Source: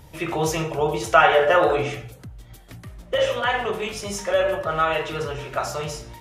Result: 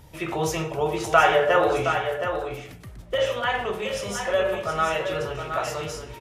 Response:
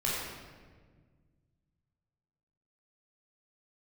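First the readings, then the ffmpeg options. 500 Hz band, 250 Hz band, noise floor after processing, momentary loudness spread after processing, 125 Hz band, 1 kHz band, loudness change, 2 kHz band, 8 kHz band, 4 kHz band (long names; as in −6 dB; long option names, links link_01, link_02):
−2.0 dB, −1.5 dB, −44 dBFS, 12 LU, −2.0 dB, −2.0 dB, −2.5 dB, −2.0 dB, −2.0 dB, −2.0 dB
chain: -af "aecho=1:1:719:0.422,volume=-2.5dB"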